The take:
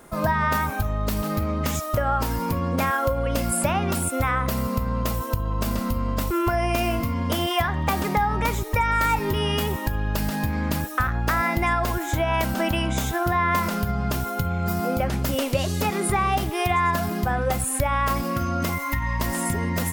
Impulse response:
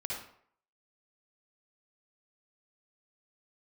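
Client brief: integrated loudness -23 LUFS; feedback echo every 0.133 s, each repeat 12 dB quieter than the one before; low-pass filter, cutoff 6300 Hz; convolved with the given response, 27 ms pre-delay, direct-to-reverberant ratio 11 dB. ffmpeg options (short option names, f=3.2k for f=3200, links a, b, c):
-filter_complex "[0:a]lowpass=6.3k,aecho=1:1:133|266|399:0.251|0.0628|0.0157,asplit=2[a][b];[1:a]atrim=start_sample=2205,adelay=27[c];[b][c]afir=irnorm=-1:irlink=0,volume=-13dB[d];[a][d]amix=inputs=2:normalize=0,volume=1dB"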